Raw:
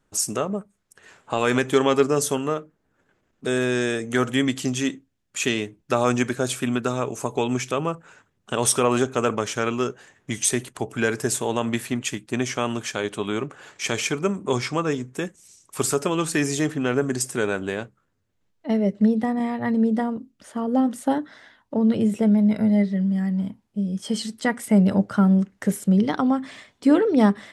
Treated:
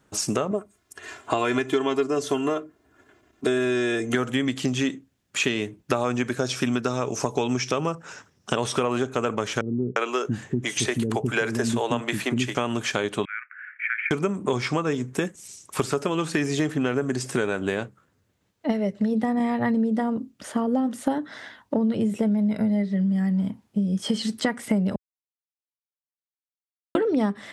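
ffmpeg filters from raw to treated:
-filter_complex "[0:a]asettb=1/sr,asplit=3[a][b][c];[a]atrim=end=0.514[d];[b]atrim=start=0.51:end=4.15,asetpts=PTS-STARTPTS,afade=t=in:d=0.004:c=qsin,afade=t=out:st=3.636:d=0.004:c=qsin,aecho=1:1:2.9:0.72,atrim=end_sample=160524[e];[c]atrim=start=4.146[f];[d][e]acrossfade=d=0.004:c1=hsin:c2=qsin[g];[g][f]acrossfade=d=0.004:c1=qsin:c2=hsin,asettb=1/sr,asplit=3[h][i][j];[h]atrim=end=6.394[k];[i]atrim=start=6.39:end=8.56,asetpts=PTS-STARTPTS,afade=t=in:d=0.004:c=qsin,afade=t=out:st=2.166:d=0.004:c=qsin,equalizer=f=5.5k:w=3.6:g=14.5[l];[j]atrim=start=8.556[m];[k][l]acrossfade=d=0.004:c1=hsin:c2=qsin[n];[n][m]acrossfade=d=0.004:c1=qsin:c2=hsin,asettb=1/sr,asplit=3[o][p][q];[o]atrim=end=9.614[r];[p]atrim=start=9.61:end=12.55,asetpts=PTS-STARTPTS,afade=t=in:d=0.004:c=qsin,afade=t=out:st=2.936:d=0.004:c=qsin,acrossover=split=330[s][t];[t]adelay=350[u];[s][u]amix=inputs=2:normalize=0,atrim=end_sample=129654[v];[q]atrim=start=12.546[w];[r][v]acrossfade=d=0.004:c1=hsin:c2=qsin[x];[x][w]acrossfade=d=0.004:c1=qsin:c2=hsin,asettb=1/sr,asplit=3[y][z][aa];[y]atrim=end=13.254[ab];[z]atrim=start=13.25:end=14.11,asetpts=PTS-STARTPTS,afade=t=in:d=0.004:c=qsin,afade=t=out:st=0.856:d=0.004:c=qsin,asuperpass=centerf=1800:order=8:qfactor=2.1[ac];[aa]atrim=start=14.106[ad];[ab][ac]acrossfade=d=0.004:c1=hsin:c2=qsin[ae];[ae][ad]acrossfade=d=0.004:c1=qsin:c2=hsin,asplit=3[af][ag][ah];[af]afade=t=out:st=18.71:d=0.02[ai];[ag]equalizer=f=280:t=o:w=2:g=-7.5,afade=t=in:st=18.71:d=0.02,afade=t=out:st=19.11:d=0.02[aj];[ah]afade=t=in:st=19.11:d=0.02[ak];[ai][aj][ak]amix=inputs=3:normalize=0,asplit=3[al][am][an];[al]atrim=end=24.96,asetpts=PTS-STARTPTS,afade=t=out:st=24.956:d=0.004:c=hsin[ao];[am]atrim=start=24.96:end=26.95,asetpts=PTS-STARTPTS,volume=0[ap];[an]atrim=start=26.95,asetpts=PTS-STARTPTS,afade=t=in:d=0.004:c=hsin[aq];[ao][ap][aq]concat=n=3:v=0:a=1,acrossover=split=4900[ar][as];[as]acompressor=threshold=-43dB:ratio=4:attack=1:release=60[at];[ar][at]amix=inputs=2:normalize=0,highpass=61,acompressor=threshold=-29dB:ratio=6,volume=8dB"

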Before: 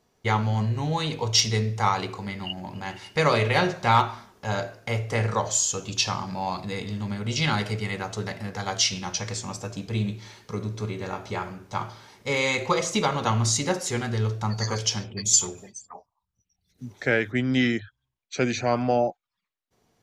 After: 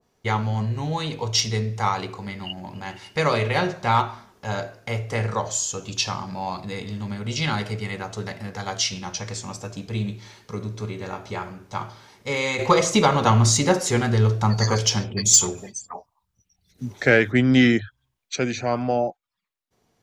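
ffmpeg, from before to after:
-filter_complex "[0:a]asettb=1/sr,asplit=3[a][b][c];[a]atrim=end=12.594[d];[b]atrim=start=12.59:end=18.36,asetpts=PTS-STARTPTS,afade=t=in:d=0.004:c=qsin,afade=t=out:st=5.766:d=0.004:c=qsin,acontrast=87[e];[c]atrim=start=18.356[f];[d][e]acrossfade=d=0.004:c1=hsin:c2=qsin[g];[g][f]acrossfade=d=0.004:c1=qsin:c2=hsin,adynamicequalizer=threshold=0.0158:dfrequency=1600:dqfactor=0.7:tfrequency=1600:tqfactor=0.7:attack=5:release=100:ratio=0.375:range=1.5:mode=cutabove:tftype=highshelf"

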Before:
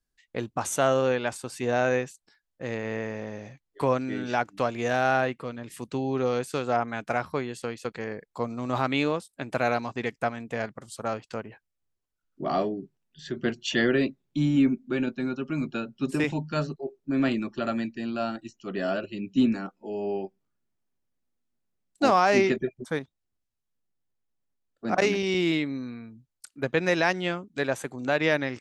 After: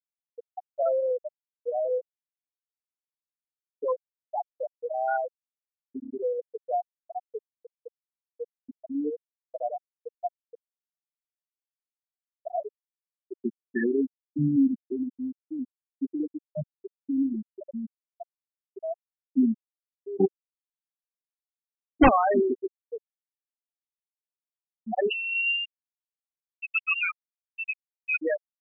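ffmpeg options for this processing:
-filter_complex "[0:a]asettb=1/sr,asplit=3[a][b][c];[a]atrim=end=20.204[d];[b]atrim=start=20.2:end=22.09,asetpts=PTS-STARTPTS,afade=t=in:d=0.004:c=qsin,afade=t=out:st=1.886:d=0.004:c=qsin,aeval=exprs='0.355*sin(PI/2*3.98*val(0)/0.355)':c=same[e];[c]atrim=start=22.086[f];[d][e]acrossfade=d=0.004:c1=hsin:c2=qsin[g];[g][f]acrossfade=d=0.004:c1=qsin:c2=hsin,asettb=1/sr,asplit=3[h][i][j];[h]atrim=end=25.104[k];[i]atrim=start=25.1:end=28.22,asetpts=PTS-STARTPTS,afade=t=in:d=0.004:c=qsin,afade=t=out:st=3.116:d=0.004:c=qsin,lowpass=f=2.6k:t=q:w=0.5098,lowpass=f=2.6k:t=q:w=0.6013,lowpass=f=2.6k:t=q:w=0.9,lowpass=f=2.6k:t=q:w=2.563,afreqshift=-3100[l];[j]atrim=start=28.216[m];[k][l]acrossfade=d=0.004:c1=hsin:c2=qsin[n];[n][m]acrossfade=d=0.004:c1=qsin:c2=hsin,afftfilt=real='re*gte(hypot(re,im),0.398)':imag='im*gte(hypot(re,im),0.398)':win_size=1024:overlap=0.75"

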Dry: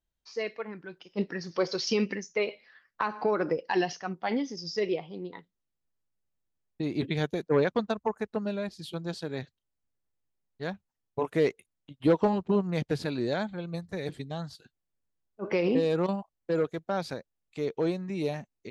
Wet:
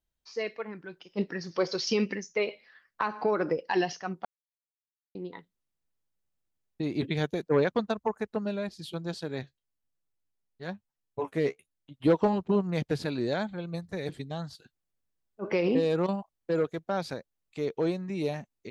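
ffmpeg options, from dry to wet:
-filter_complex "[0:a]asplit=3[a][b][c];[a]afade=t=out:st=9.42:d=0.02[d];[b]flanger=delay=5.4:depth=9.5:regen=33:speed=1:shape=triangular,afade=t=in:st=9.42:d=0.02,afade=t=out:st=11.93:d=0.02[e];[c]afade=t=in:st=11.93:d=0.02[f];[d][e][f]amix=inputs=3:normalize=0,asplit=3[g][h][i];[g]atrim=end=4.25,asetpts=PTS-STARTPTS,afade=t=out:st=4.246:d=0.004:c=hsin[j];[h]atrim=start=4.25:end=5.15,asetpts=PTS-STARTPTS,volume=0[k];[i]atrim=start=5.15,asetpts=PTS-STARTPTS,afade=t=in:d=0.004:c=hsin[l];[j][k][l]concat=n=3:v=0:a=1"

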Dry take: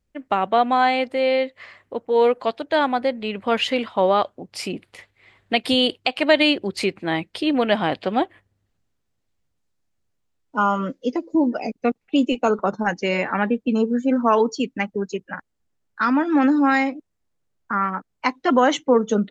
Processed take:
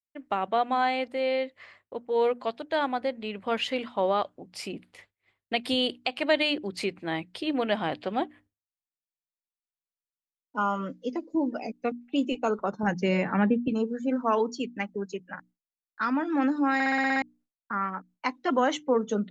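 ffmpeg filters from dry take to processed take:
-filter_complex "[0:a]asettb=1/sr,asplit=3[a][b][c];[a]atrim=end=12.834[d];[b]atrim=start=12.83:end=13.68,asetpts=PTS-STARTPTS,afade=t=in:d=0.004:c=qsin,afade=t=out:st=0.846:d=0.004:c=qsin,equalizer=f=110:w=0.46:g=13.5[e];[c]atrim=start=13.676[f];[d][e]acrossfade=d=0.004:c1=hsin:c2=qsin[g];[g][f]acrossfade=d=0.004:c1=qsin:c2=hsin,asplit=9[h][i][j][k][l][m][n][o][p];[h]atrim=end=16.802[q];[i]atrim=start=16.738:end=16.802[r];[j]atrim=start=16.738:end=16.802[s];[k]atrim=start=16.738:end=16.802[t];[l]atrim=start=16.738:end=16.802[u];[m]atrim=start=16.738:end=16.802[v];[n]atrim=start=16.738:end=16.802[w];[o]atrim=start=16.738:end=16.802[x];[p]atrim=start=17.218[y];[q][r]acrossfade=d=0.004:c1=hsin:c2=hsin[z];[z][s]acrossfade=d=0.004:c1=hsin:c2=hsin[aa];[aa][t]acrossfade=d=0.004:c1=hsin:c2=hsin[ab];[ab][u]acrossfade=d=0.004:c1=hsin:c2=hsin[ac];[ac][v]acrossfade=d=0.004:c1=hsin:c2=hsin[ad];[ad][w]acrossfade=d=0.004:c1=hsin:c2=hsin[ae];[ae][x]acrossfade=d=0.004:c1=hsin:c2=hsin[af];[af][y]acrossfade=d=0.004:c1=hsin:c2=hsin,bandreject=f=60:t=h:w=6,bandreject=f=120:t=h:w=6,bandreject=f=180:t=h:w=6,bandreject=f=240:t=h:w=6,bandreject=f=300:t=h:w=6,agate=range=-33dB:threshold=-44dB:ratio=3:detection=peak,volume=-7.5dB"

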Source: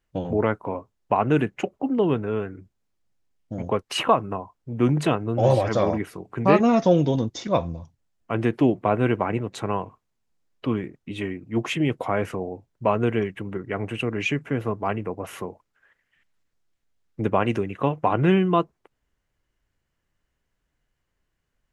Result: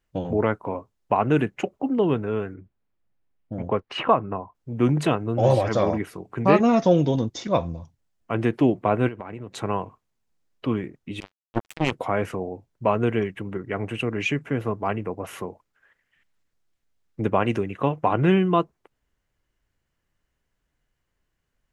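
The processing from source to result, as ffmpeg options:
-filter_complex "[0:a]asettb=1/sr,asplit=3[a][b][c];[a]atrim=end=2.544[d];[b]atrim=start=2.54:end=4.55,asetpts=PTS-STARTPTS,afade=t=in:d=0.004:c=qsin,afade=t=out:st=2.006:d=0.004:c=qsin,lowpass=2.6k[e];[c]atrim=start=4.546[f];[d][e]acrossfade=d=0.004:c1=hsin:c2=qsin[g];[g][f]acrossfade=d=0.004:c1=qsin:c2=hsin,asettb=1/sr,asplit=3[h][i][j];[h]atrim=end=9.084[k];[i]atrim=start=9.08:end=9.56,asetpts=PTS-STARTPTS,afade=t=in:d=0.004:c=qsin,afade=t=out:st=0.476:d=0.004:c=qsin,acompressor=threshold=-31dB:ratio=8:attack=3.2:release=140:knee=1:detection=peak[l];[j]atrim=start=9.556[m];[k][l]acrossfade=d=0.004:c1=hsin:c2=qsin[n];[n][m]acrossfade=d=0.004:c1=qsin:c2=hsin,asettb=1/sr,asplit=3[o][p][q];[o]atrim=end=11.204[r];[p]atrim=start=11.2:end=11.92,asetpts=PTS-STARTPTS,afade=t=in:d=0.004:c=qsin,afade=t=out:st=0.716:d=0.004:c=qsin,acrusher=bits=2:mix=0:aa=0.5[s];[q]atrim=start=11.916[t];[r][s]acrossfade=d=0.004:c1=hsin:c2=qsin[u];[u][t]acrossfade=d=0.004:c1=qsin:c2=hsin"

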